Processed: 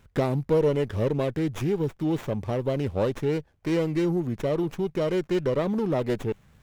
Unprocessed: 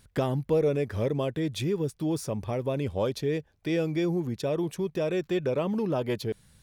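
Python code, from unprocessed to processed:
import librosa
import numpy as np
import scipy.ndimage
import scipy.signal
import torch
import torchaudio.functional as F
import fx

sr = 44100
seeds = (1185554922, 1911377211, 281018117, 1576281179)

y = fx.running_max(x, sr, window=9)
y = F.gain(torch.from_numpy(y), 2.5).numpy()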